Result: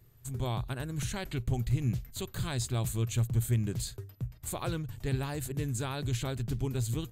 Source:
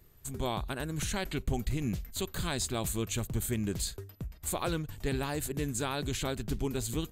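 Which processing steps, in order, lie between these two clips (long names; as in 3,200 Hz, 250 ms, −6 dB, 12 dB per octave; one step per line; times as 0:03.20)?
parametric band 120 Hz +14.5 dB 0.4 octaves
level −3.5 dB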